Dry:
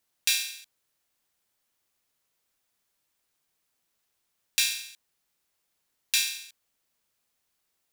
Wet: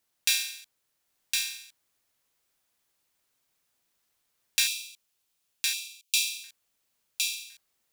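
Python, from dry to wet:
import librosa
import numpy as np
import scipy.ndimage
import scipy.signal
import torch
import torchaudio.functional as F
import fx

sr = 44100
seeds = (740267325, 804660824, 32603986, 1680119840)

p1 = fx.cheby1_highpass(x, sr, hz=2400.0, order=6, at=(4.67, 6.44))
y = p1 + fx.echo_single(p1, sr, ms=1061, db=-3.5, dry=0)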